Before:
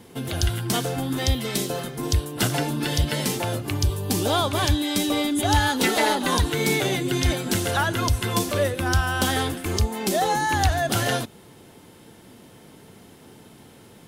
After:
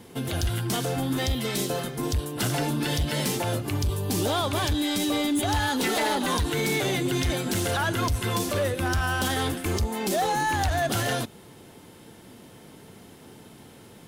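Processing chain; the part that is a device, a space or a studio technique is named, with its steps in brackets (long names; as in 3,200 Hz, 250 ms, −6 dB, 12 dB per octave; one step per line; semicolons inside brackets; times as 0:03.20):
limiter into clipper (brickwall limiter −15.5 dBFS, peak gain reduction 5.5 dB; hard clipping −20 dBFS, distortion −18 dB)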